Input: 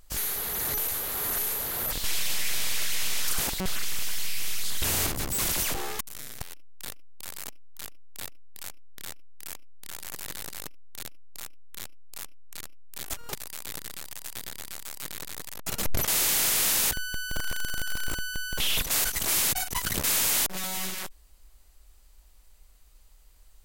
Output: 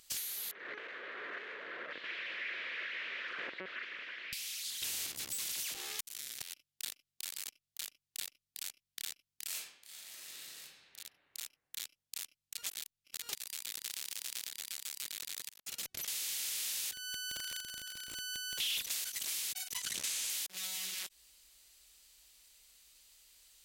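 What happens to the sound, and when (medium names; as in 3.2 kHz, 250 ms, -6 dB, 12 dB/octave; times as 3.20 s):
0.51–4.33 s: cabinet simulation 330–2000 Hz, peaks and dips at 350 Hz +4 dB, 530 Hz +5 dB, 810 Hz -10 dB, 1.7 kHz +4 dB
9.46–10.60 s: reverb throw, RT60 1.5 s, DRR -9 dB
12.58–13.22 s: reverse
13.83–14.47 s: spectral contrast reduction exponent 0.32
15.49–16.78 s: fade in linear, from -21.5 dB
17.60–18.15 s: tilt shelf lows +3.5 dB, about 680 Hz
19.77–20.30 s: decimation joined by straight lines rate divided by 2×
whole clip: treble shelf 5.1 kHz +10 dB; compression 6:1, threshold -32 dBFS; frequency weighting D; trim -9 dB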